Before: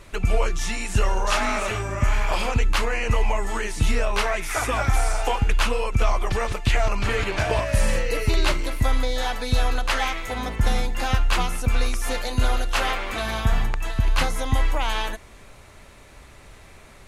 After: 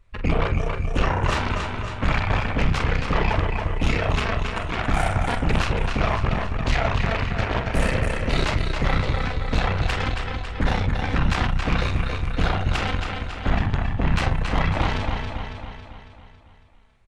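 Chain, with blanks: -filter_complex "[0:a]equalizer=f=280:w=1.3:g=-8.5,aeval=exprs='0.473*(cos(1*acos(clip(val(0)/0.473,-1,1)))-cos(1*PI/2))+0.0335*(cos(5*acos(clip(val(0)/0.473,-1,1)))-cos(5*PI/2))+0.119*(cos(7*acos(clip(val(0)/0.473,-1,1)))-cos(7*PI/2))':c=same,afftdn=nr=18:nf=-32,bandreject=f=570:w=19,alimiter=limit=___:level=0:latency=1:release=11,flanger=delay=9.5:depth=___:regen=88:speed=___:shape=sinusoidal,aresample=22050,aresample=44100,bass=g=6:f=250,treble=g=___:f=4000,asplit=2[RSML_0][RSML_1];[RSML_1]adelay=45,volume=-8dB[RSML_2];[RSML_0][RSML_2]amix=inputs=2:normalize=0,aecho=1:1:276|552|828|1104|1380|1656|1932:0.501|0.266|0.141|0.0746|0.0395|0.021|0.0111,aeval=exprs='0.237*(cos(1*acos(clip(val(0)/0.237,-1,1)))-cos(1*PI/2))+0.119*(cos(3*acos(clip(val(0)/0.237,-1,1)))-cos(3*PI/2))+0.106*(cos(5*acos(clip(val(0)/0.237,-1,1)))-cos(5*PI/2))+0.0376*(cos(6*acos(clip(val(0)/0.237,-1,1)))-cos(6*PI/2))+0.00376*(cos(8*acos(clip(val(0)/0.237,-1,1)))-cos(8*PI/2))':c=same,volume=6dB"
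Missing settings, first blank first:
-15.5dB, 3.6, 0.94, -8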